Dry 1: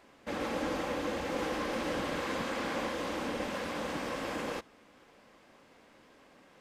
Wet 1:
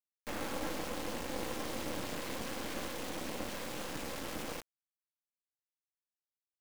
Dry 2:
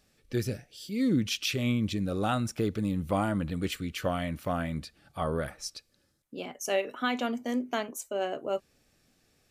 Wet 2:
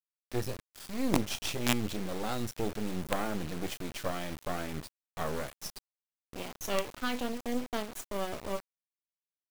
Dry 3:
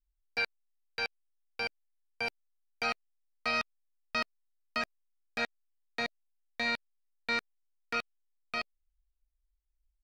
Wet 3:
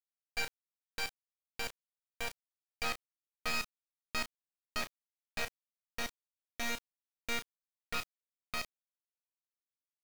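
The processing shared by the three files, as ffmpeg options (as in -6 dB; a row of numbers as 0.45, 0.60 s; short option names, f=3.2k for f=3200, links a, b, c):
-filter_complex "[0:a]asplit=2[a][b];[b]adelay=33,volume=-12.5dB[c];[a][c]amix=inputs=2:normalize=0,adynamicequalizer=threshold=0.00708:dfrequency=1200:dqfactor=0.72:tfrequency=1200:tqfactor=0.72:attack=5:release=100:ratio=0.375:range=3:mode=cutabove:tftype=bell,acrusher=bits=4:dc=4:mix=0:aa=0.000001"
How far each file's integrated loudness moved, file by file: -5.0, -4.0, -4.5 LU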